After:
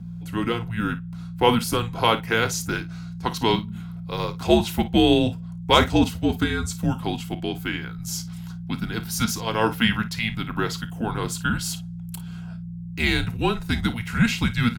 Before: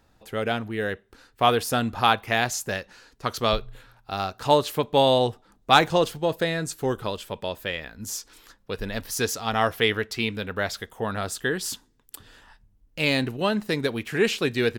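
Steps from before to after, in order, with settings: hum 60 Hz, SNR 11 dB; frequency shift -230 Hz; comb of notches 590 Hz; on a send: early reflections 31 ms -15.5 dB, 54 ms -15 dB; on the sum: trim +2.5 dB

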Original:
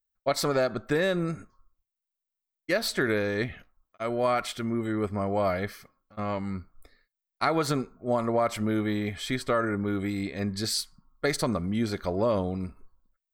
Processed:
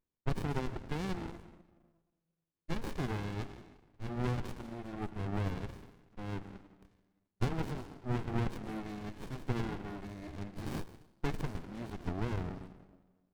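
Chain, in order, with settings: Chebyshev high-pass 480 Hz, order 2; on a send at -12 dB: reverberation RT60 1.1 s, pre-delay 114 ms; on the sum: sliding maximum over 65 samples; trim -3 dB

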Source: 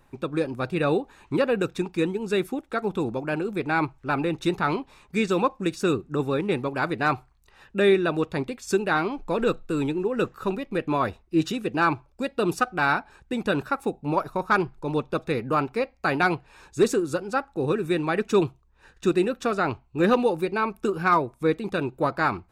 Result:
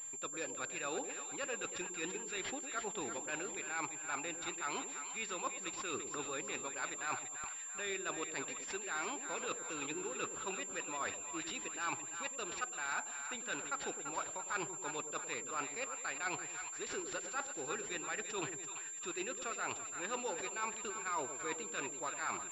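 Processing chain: differentiator; reverse; compression 5:1, threshold -52 dBFS, peak gain reduction 19.5 dB; reverse; two-band feedback delay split 740 Hz, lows 105 ms, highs 338 ms, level -8 dB; class-D stage that switches slowly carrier 7.3 kHz; trim +13.5 dB

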